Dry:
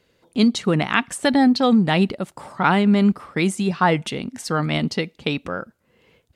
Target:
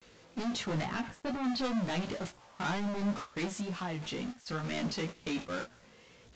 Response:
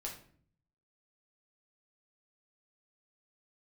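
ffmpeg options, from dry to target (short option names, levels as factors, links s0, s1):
-filter_complex "[0:a]aeval=exprs='val(0)+0.5*0.0501*sgn(val(0))':c=same,agate=range=0.1:threshold=0.0562:ratio=16:detection=peak,asettb=1/sr,asplit=3[s0][s1][s2];[s0]atrim=end=0.854[s3];[s1]atrim=start=0.85:end=1.44,asetpts=PTS-STARTPTS,afade=t=in:d=0.004:c=qsin,afade=t=out:st=0.586:d=0.004:c=qsin,lowpass=f=1300:p=1[s4];[s2]atrim=start=1.436[s5];[s3][s4]acrossfade=d=0.004:c1=hsin:c2=qsin[s6];[s6][s5]acrossfade=d=0.004:c1=qsin:c2=hsin,asettb=1/sr,asplit=3[s7][s8][s9];[s7]atrim=end=3.504[s10];[s8]atrim=start=3.5:end=4.64,asetpts=PTS-STARTPTS,afade=t=in:d=0.004:c=qsin,afade=t=out:st=1.136:d=0.004:c=qsin,acompressor=threshold=0.0794:ratio=6[s11];[s9]atrim=start=4.636[s12];[s10][s11]acrossfade=d=0.004:c1=hsin:c2=qsin[s13];[s13][s12]acrossfade=d=0.004:c1=qsin:c2=hsin,acrusher=bits=4:mode=log:mix=0:aa=0.000001,asoftclip=type=tanh:threshold=0.0891,flanger=delay=16:depth=3.4:speed=2.1,acrusher=bits=8:mix=0:aa=0.000001,volume=0.473" -ar 16000 -c:a aac -b:a 64k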